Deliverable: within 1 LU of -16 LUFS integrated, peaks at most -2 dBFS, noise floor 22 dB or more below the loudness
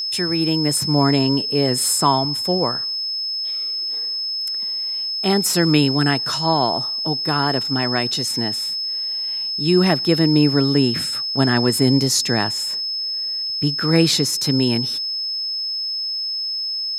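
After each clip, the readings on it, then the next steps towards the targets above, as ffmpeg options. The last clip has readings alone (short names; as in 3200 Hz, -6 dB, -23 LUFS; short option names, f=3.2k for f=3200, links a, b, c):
steady tone 5200 Hz; tone level -22 dBFS; loudness -18.5 LUFS; peak -2.0 dBFS; loudness target -16.0 LUFS
-> -af "bandreject=f=5.2k:w=30"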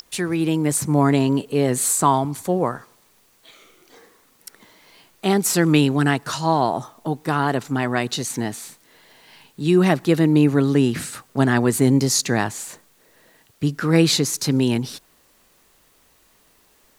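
steady tone none; loudness -20.0 LUFS; peak -2.5 dBFS; loudness target -16.0 LUFS
-> -af "volume=4dB,alimiter=limit=-2dB:level=0:latency=1"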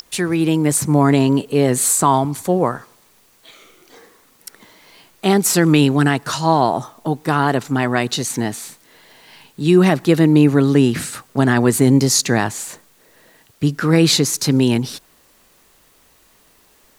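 loudness -16.0 LUFS; peak -2.0 dBFS; noise floor -54 dBFS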